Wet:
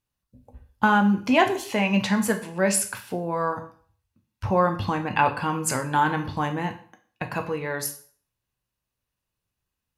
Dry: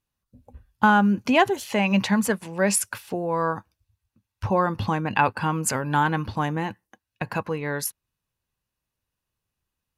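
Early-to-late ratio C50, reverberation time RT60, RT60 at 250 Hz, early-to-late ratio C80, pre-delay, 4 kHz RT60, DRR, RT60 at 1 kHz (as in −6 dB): 12.5 dB, 0.50 s, 0.45 s, 16.0 dB, 6 ms, 0.45 s, 5.0 dB, 0.50 s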